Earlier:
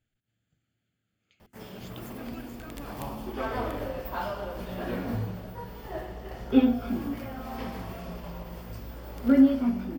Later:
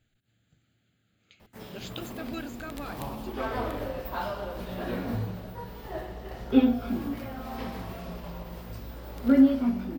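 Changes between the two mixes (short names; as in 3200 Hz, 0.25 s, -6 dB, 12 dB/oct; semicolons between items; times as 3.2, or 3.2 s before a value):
speech +8.5 dB; master: remove notch 3900 Hz, Q 9.8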